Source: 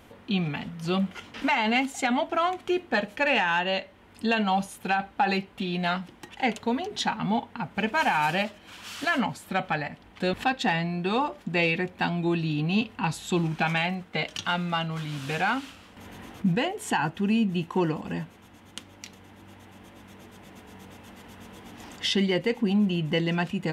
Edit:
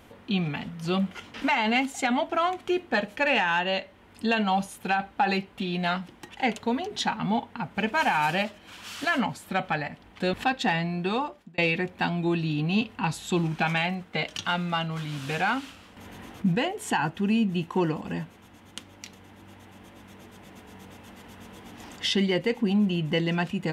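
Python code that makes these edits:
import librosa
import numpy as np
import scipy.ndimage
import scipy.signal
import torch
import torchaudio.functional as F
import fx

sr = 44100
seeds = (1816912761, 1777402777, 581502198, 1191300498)

y = fx.edit(x, sr, fx.fade_out_span(start_s=11.06, length_s=0.52), tone=tone)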